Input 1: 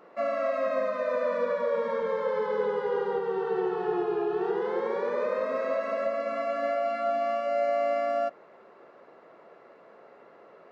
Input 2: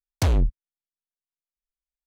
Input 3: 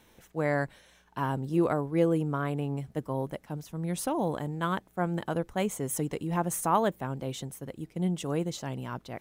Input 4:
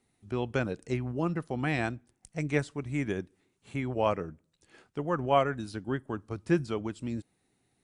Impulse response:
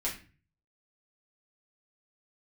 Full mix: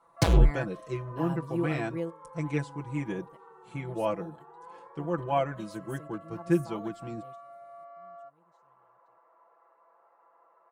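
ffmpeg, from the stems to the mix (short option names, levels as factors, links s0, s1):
-filter_complex "[0:a]acompressor=threshold=0.00794:ratio=2,bandpass=f=1000:t=q:w=4.4:csg=0,volume=0.668[s0];[1:a]adynamicsmooth=sensitivity=7.5:basefreq=1100,volume=0.891[s1];[2:a]volume=0.299,afade=t=out:st=1.78:d=0.47:silence=0.237137[s2];[3:a]equalizer=f=300:t=o:w=2.9:g=4,volume=0.398,asplit=2[s3][s4];[s4]apad=whole_len=405988[s5];[s2][s5]sidechaingate=range=0.0794:threshold=0.00141:ratio=16:detection=peak[s6];[s0][s1][s6][s3]amix=inputs=4:normalize=0,aecho=1:1:6:0.97"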